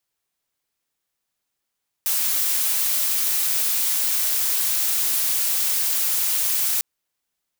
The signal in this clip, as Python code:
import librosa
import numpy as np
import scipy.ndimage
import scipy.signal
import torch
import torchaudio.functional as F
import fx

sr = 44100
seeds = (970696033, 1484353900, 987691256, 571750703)

y = fx.noise_colour(sr, seeds[0], length_s=4.75, colour='blue', level_db=-21.5)